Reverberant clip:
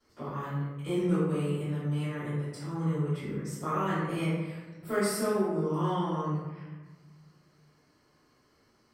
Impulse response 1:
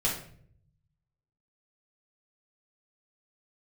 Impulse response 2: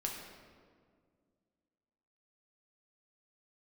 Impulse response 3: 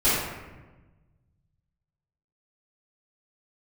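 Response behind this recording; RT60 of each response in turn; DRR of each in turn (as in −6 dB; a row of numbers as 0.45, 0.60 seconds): 3; 0.60, 2.0, 1.2 seconds; −5.0, −1.0, −16.0 decibels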